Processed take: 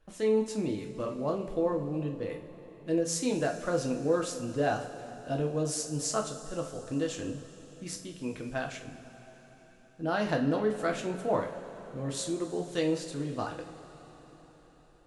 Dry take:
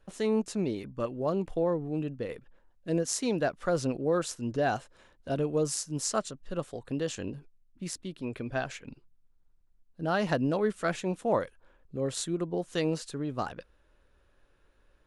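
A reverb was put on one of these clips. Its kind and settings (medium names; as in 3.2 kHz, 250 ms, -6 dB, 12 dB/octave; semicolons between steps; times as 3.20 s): two-slope reverb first 0.36 s, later 4.9 s, from -18 dB, DRR 1.5 dB; trim -3 dB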